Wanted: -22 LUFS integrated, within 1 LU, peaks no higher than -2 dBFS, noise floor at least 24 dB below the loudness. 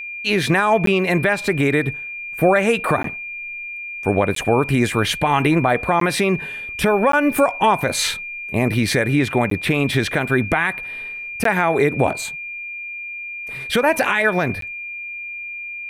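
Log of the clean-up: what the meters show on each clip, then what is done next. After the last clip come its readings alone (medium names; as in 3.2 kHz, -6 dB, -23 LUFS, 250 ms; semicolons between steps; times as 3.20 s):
dropouts 8; longest dropout 13 ms; steady tone 2.4 kHz; tone level -28 dBFS; loudness -19.5 LUFS; peak level -5.0 dBFS; loudness target -22.0 LUFS
-> interpolate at 0.86/3.03/4.35/6.00/7.12/9.50/11.44/14.61 s, 13 ms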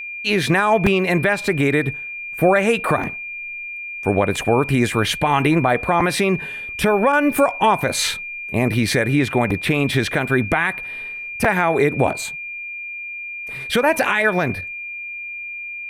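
dropouts 0; steady tone 2.4 kHz; tone level -28 dBFS
-> band-stop 2.4 kHz, Q 30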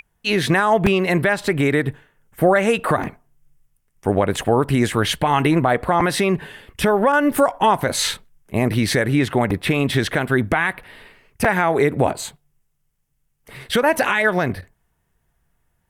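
steady tone not found; loudness -19.0 LUFS; peak level -4.0 dBFS; loudness target -22.0 LUFS
-> trim -3 dB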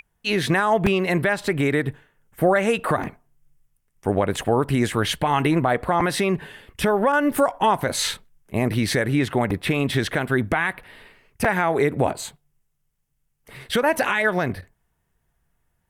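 loudness -22.0 LUFS; peak level -7.0 dBFS; noise floor -72 dBFS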